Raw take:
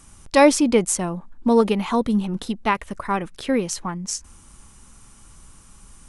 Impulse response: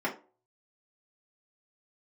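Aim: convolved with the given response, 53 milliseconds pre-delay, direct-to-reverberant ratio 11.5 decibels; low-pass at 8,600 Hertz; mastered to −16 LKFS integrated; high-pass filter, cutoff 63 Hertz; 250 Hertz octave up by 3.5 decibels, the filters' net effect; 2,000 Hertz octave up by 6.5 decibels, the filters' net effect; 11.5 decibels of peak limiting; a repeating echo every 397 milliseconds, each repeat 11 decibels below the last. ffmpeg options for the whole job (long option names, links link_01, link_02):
-filter_complex "[0:a]highpass=63,lowpass=8600,equalizer=frequency=250:width_type=o:gain=4,equalizer=frequency=2000:width_type=o:gain=7.5,alimiter=limit=-12.5dB:level=0:latency=1,aecho=1:1:397|794|1191:0.282|0.0789|0.0221,asplit=2[link_01][link_02];[1:a]atrim=start_sample=2205,adelay=53[link_03];[link_02][link_03]afir=irnorm=-1:irlink=0,volume=-20dB[link_04];[link_01][link_04]amix=inputs=2:normalize=0,volume=7dB"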